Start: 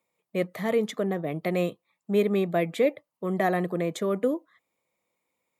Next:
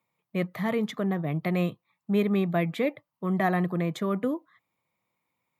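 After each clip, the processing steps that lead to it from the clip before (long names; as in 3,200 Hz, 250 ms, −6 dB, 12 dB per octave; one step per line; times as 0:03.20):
octave-band graphic EQ 125/500/1,000/8,000 Hz +9/−7/+4/−8 dB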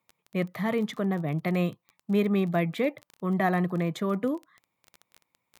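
surface crackle 22 per second −35 dBFS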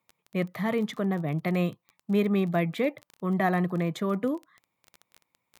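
no processing that can be heard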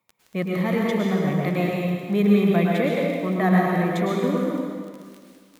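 dense smooth reverb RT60 1.9 s, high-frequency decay 0.95×, pre-delay 95 ms, DRR −3 dB
level +1.5 dB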